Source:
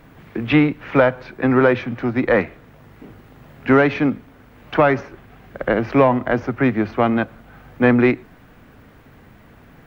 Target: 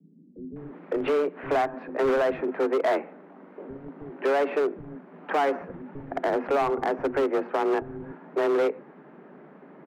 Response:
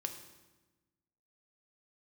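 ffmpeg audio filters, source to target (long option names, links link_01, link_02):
-filter_complex "[0:a]lowpass=1200,alimiter=limit=-12.5dB:level=0:latency=1:release=169,afreqshift=140,asoftclip=type=hard:threshold=-19dB,acrossover=split=230[link_01][link_02];[link_02]adelay=560[link_03];[link_01][link_03]amix=inputs=2:normalize=0"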